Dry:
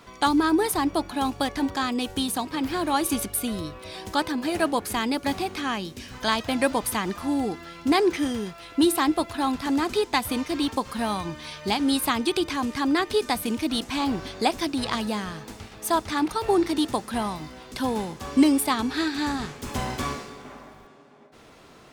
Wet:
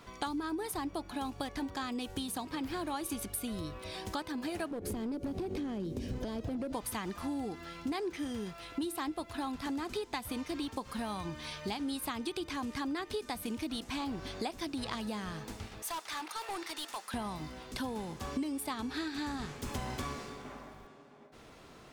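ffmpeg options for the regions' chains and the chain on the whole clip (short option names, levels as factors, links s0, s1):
-filter_complex "[0:a]asettb=1/sr,asplit=3[s0][s1][s2];[s0]atrim=end=4.714[s3];[s1]atrim=start=4.71:end=6.73,asetpts=PTS-STARTPTS,afade=t=in:d=0.004:c=qsin,afade=t=out:st=2.016:d=0.004:c=qsin,lowshelf=f=730:t=q:w=1.5:g=13.5,acompressor=threshold=0.0708:ratio=6:attack=3.2:release=140:knee=1:detection=peak,asoftclip=type=hard:threshold=0.0841[s4];[s2]atrim=start=6.726[s5];[s3][s4]acrossfade=d=0.004:c1=hsin:c2=qsin[s6];[s6][s5]acrossfade=d=0.004:c1=qsin:c2=hsin,asettb=1/sr,asplit=3[s7][s8][s9];[s7]atrim=end=15.824[s10];[s8]atrim=start=15.82:end=17.14,asetpts=PTS-STARTPTS,afade=t=in:d=0.004:c=qsin,afade=t=out:st=1.316:d=0.004:c=qsin,highpass=920,asoftclip=type=hard:threshold=0.0299[s11];[s9]atrim=start=17.136[s12];[s10][s11]acrossfade=d=0.004:c1=hsin:c2=qsin[s13];[s13][s12]acrossfade=d=0.004:c1=qsin:c2=hsin,lowshelf=f=100:g=5,acompressor=threshold=0.0316:ratio=5,volume=0.596"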